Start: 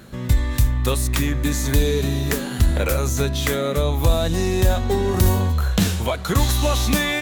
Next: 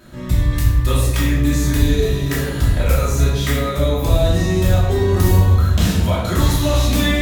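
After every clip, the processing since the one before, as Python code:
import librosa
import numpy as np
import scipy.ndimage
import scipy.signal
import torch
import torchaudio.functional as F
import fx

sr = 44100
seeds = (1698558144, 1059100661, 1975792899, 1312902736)

y = fx.room_shoebox(x, sr, seeds[0], volume_m3=410.0, walls='mixed', distance_m=2.8)
y = y * 10.0 ** (-6.0 / 20.0)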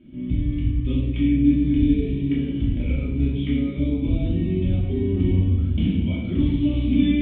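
y = fx.formant_cascade(x, sr, vowel='i')
y = y * 10.0 ** (5.0 / 20.0)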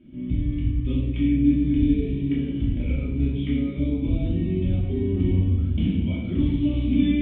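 y = fx.air_absorb(x, sr, metres=69.0)
y = y * 10.0 ** (-1.5 / 20.0)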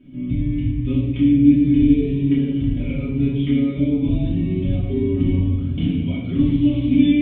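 y = x + 0.76 * np.pad(x, (int(7.2 * sr / 1000.0), 0))[:len(x)]
y = y * 10.0 ** (2.0 / 20.0)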